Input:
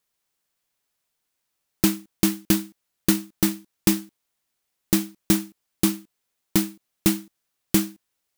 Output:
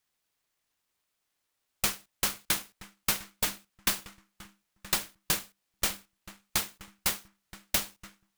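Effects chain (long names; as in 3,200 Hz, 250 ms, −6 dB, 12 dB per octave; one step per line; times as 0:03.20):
guitar amp tone stack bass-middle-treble 10-0-10
formants moved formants −5 semitones
feedback echo with a low-pass in the loop 975 ms, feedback 28%, low-pass 1,500 Hz, level −10 dB
short delay modulated by noise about 3,700 Hz, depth 0.046 ms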